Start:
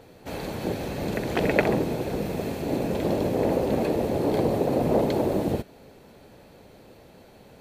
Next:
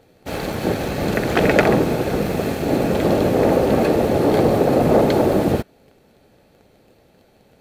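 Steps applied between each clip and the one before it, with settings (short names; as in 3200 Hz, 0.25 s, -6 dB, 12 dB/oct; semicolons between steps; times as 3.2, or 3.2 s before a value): dynamic EQ 1300 Hz, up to +6 dB, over -44 dBFS, Q 1.5; sample leveller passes 2; notch 990 Hz, Q 10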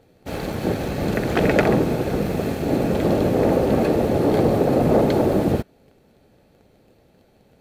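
low shelf 420 Hz +4.5 dB; gain -4.5 dB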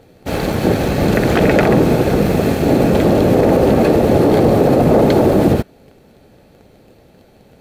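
limiter -12.5 dBFS, peak gain reduction 6.5 dB; gain +9 dB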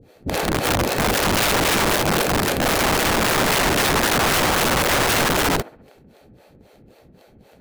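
harmonic tremolo 3.8 Hz, depth 100%, crossover 400 Hz; band-limited delay 66 ms, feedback 43%, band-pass 1100 Hz, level -11.5 dB; wrapped overs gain 15 dB; gain +1.5 dB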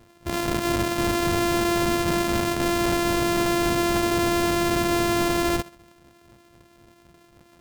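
sample sorter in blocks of 128 samples; gain -3.5 dB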